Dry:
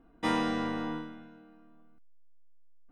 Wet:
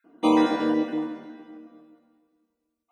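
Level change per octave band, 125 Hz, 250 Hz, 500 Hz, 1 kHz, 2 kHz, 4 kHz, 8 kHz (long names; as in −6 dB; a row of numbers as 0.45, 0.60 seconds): −1.5 dB, +10.5 dB, +10.5 dB, +6.5 dB, +1.0 dB, +3.5 dB, can't be measured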